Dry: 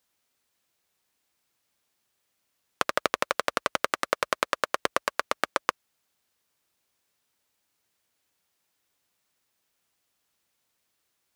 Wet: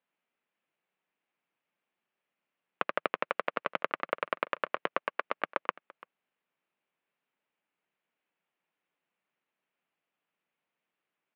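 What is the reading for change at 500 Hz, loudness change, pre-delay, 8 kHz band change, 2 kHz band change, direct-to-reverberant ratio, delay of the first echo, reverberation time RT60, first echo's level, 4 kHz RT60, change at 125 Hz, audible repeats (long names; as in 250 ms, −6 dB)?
−4.5 dB, −5.5 dB, no reverb audible, below −35 dB, −5.0 dB, no reverb audible, 339 ms, no reverb audible, −21.5 dB, no reverb audible, −7.5 dB, 1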